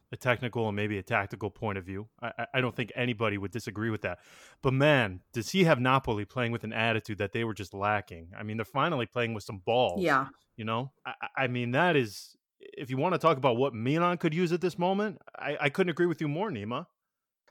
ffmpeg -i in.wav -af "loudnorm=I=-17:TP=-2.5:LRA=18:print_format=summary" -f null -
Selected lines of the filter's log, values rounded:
Input Integrated:    -29.8 LUFS
Input True Peak:      -9.7 dBTP
Input LRA:             3.5 LU
Input Threshold:     -40.1 LUFS